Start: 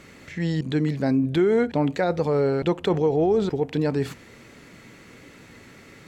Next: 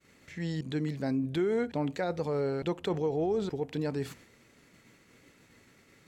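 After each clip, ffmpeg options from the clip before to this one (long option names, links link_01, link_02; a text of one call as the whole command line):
ffmpeg -i in.wav -af "agate=range=-33dB:threshold=-42dB:ratio=3:detection=peak,highshelf=frequency=5200:gain=6,volume=-9dB" out.wav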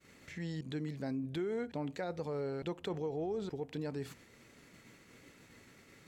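ffmpeg -i in.wav -af "acompressor=threshold=-51dB:ratio=1.5,volume=1dB" out.wav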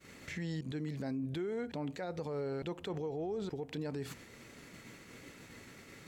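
ffmpeg -i in.wav -af "alimiter=level_in=13dB:limit=-24dB:level=0:latency=1:release=119,volume=-13dB,volume=6dB" out.wav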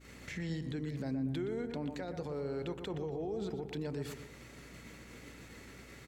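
ffmpeg -i in.wav -filter_complex "[0:a]asplit=2[link_01][link_02];[link_02]adelay=120,lowpass=frequency=1900:poles=1,volume=-7.5dB,asplit=2[link_03][link_04];[link_04]adelay=120,lowpass=frequency=1900:poles=1,volume=0.47,asplit=2[link_05][link_06];[link_06]adelay=120,lowpass=frequency=1900:poles=1,volume=0.47,asplit=2[link_07][link_08];[link_08]adelay=120,lowpass=frequency=1900:poles=1,volume=0.47,asplit=2[link_09][link_10];[link_10]adelay=120,lowpass=frequency=1900:poles=1,volume=0.47[link_11];[link_01][link_03][link_05][link_07][link_09][link_11]amix=inputs=6:normalize=0,acrossover=split=430|3000[link_12][link_13][link_14];[link_13]acompressor=threshold=-42dB:ratio=6[link_15];[link_12][link_15][link_14]amix=inputs=3:normalize=0,aeval=exprs='val(0)+0.00141*(sin(2*PI*60*n/s)+sin(2*PI*2*60*n/s)/2+sin(2*PI*3*60*n/s)/3+sin(2*PI*4*60*n/s)/4+sin(2*PI*5*60*n/s)/5)':channel_layout=same" out.wav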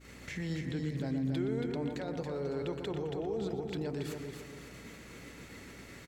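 ffmpeg -i in.wav -af "aecho=1:1:278|556|834|1112:0.501|0.17|0.0579|0.0197,volume=1.5dB" out.wav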